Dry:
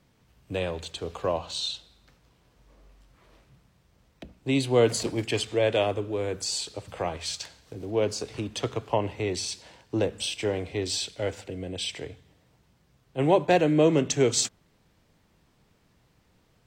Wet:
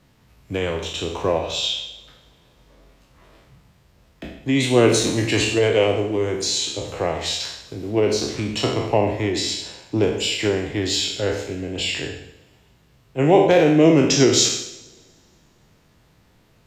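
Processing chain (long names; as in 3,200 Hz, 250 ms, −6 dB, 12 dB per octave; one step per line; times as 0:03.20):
peak hold with a decay on every bin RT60 0.68 s
formants moved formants −2 semitones
coupled-rooms reverb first 0.82 s, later 2.4 s, from −18 dB, DRR 9.5 dB
level +5 dB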